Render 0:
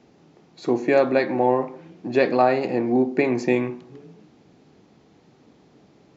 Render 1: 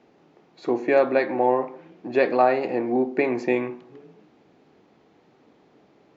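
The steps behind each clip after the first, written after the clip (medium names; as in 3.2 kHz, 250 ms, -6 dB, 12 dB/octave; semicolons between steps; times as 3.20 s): tone controls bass -9 dB, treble -10 dB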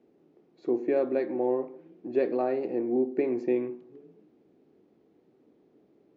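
FFT filter 130 Hz 0 dB, 370 Hz +7 dB, 880 Hz -7 dB; trim -9 dB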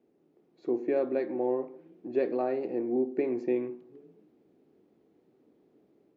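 level rider gain up to 3.5 dB; trim -5.5 dB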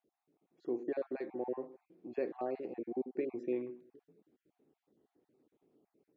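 random holes in the spectrogram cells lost 34%; trim -7 dB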